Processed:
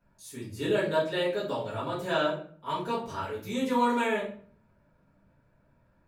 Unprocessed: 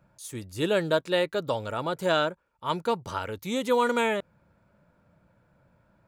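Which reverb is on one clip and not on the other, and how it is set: simulated room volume 50 m³, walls mixed, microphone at 2 m; trim -13 dB

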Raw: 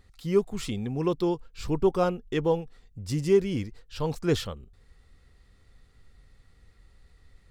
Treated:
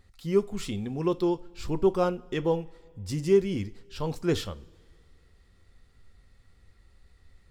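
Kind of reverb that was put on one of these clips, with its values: two-slope reverb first 0.26 s, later 2.3 s, from -22 dB, DRR 12.5 dB; trim -1.5 dB

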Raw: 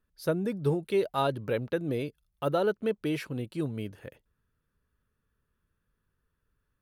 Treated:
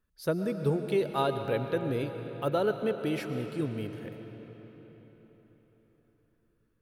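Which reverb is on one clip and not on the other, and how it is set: algorithmic reverb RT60 4.6 s, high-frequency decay 0.75×, pre-delay 75 ms, DRR 7 dB; trim -1 dB

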